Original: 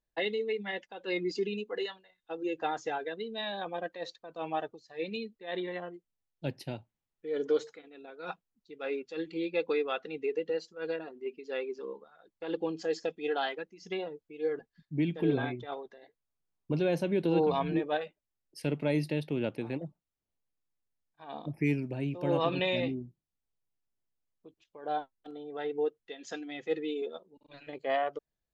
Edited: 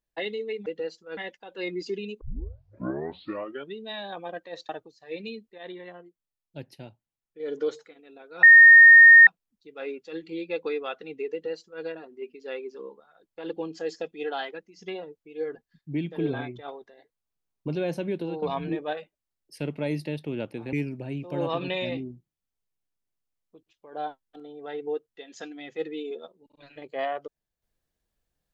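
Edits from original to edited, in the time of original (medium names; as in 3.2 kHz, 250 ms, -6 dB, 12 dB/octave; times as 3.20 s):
1.70 s: tape start 1.63 s
4.18–4.57 s: delete
5.46–7.28 s: gain -5 dB
8.31 s: add tone 1.84 kHz -7.5 dBFS 0.84 s
10.36–10.87 s: copy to 0.66 s
17.12–17.46 s: fade out, to -12 dB
19.77–21.64 s: delete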